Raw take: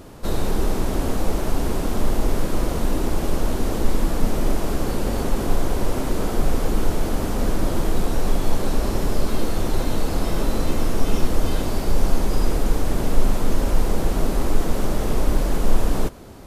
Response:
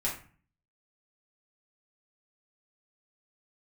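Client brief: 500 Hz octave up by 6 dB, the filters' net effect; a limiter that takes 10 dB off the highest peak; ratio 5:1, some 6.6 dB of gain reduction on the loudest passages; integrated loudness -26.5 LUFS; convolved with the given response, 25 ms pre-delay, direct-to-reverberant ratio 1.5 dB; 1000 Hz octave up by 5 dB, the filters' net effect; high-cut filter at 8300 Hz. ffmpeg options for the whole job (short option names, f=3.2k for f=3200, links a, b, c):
-filter_complex "[0:a]lowpass=8.3k,equalizer=f=500:t=o:g=6.5,equalizer=f=1k:t=o:g=4,acompressor=threshold=-15dB:ratio=5,alimiter=limit=-17.5dB:level=0:latency=1,asplit=2[a][b];[1:a]atrim=start_sample=2205,adelay=25[c];[b][c]afir=irnorm=-1:irlink=0,volume=-7dB[d];[a][d]amix=inputs=2:normalize=0"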